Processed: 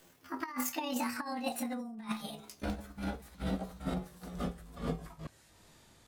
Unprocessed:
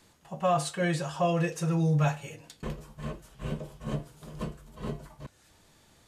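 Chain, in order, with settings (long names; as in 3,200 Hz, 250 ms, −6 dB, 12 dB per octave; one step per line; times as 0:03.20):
pitch glide at a constant tempo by +10 semitones ending unshifted
compressor whose output falls as the input rises −31 dBFS, ratio −0.5
level −3 dB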